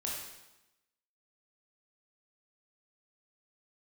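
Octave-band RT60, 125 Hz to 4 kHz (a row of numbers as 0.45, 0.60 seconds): 0.95, 1.0, 0.95, 1.0, 0.95, 0.90 seconds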